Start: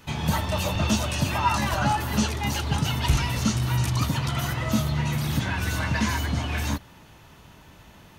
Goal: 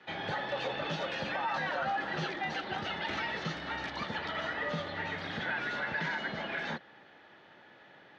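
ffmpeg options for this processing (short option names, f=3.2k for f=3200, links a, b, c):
-af "highpass=f=280:w=0.5412,highpass=f=280:w=1.3066,equalizer=f=300:t=q:w=4:g=-6,equalizer=f=1.1k:t=q:w=4:g=-7,equalizer=f=1.8k:t=q:w=4:g=6,equalizer=f=2.7k:t=q:w=4:g=-7,lowpass=f=3.6k:w=0.5412,lowpass=f=3.6k:w=1.3066,afreqshift=-55,alimiter=limit=-23dB:level=0:latency=1:release=38,volume=-2dB"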